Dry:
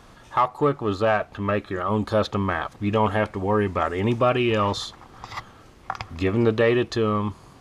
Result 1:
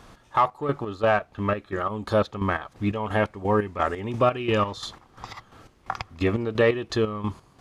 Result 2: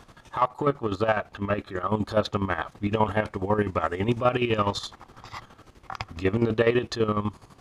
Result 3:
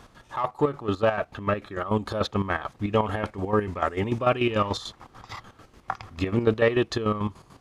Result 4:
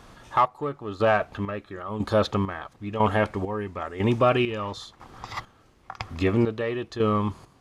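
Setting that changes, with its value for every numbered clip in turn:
chopper, rate: 2.9, 12, 6.8, 1 Hz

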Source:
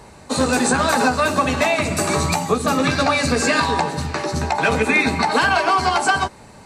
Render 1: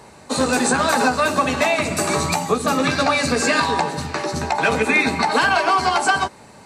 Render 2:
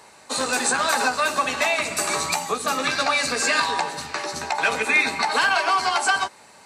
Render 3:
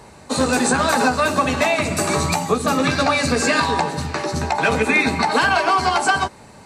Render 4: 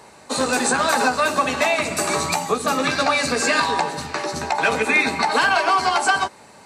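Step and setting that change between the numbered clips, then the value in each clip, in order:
HPF, cutoff: 140, 1100, 53, 410 Hz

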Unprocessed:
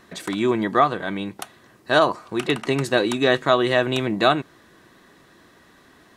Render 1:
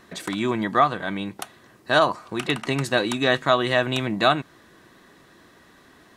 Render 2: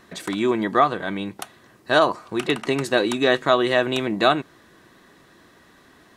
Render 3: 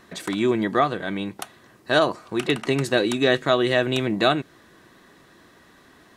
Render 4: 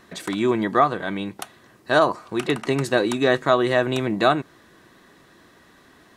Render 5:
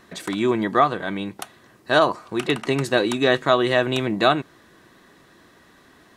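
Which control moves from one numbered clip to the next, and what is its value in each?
dynamic EQ, frequency: 400, 120, 1000, 3100, 8100 Hz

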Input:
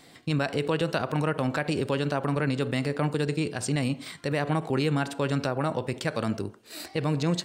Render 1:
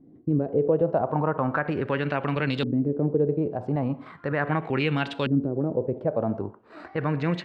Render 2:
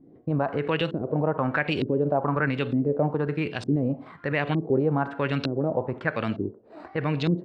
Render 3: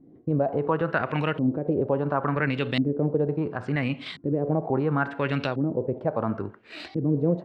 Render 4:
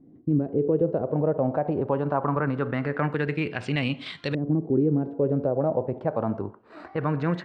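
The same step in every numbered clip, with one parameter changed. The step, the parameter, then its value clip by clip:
LFO low-pass, rate: 0.38, 1.1, 0.72, 0.23 Hz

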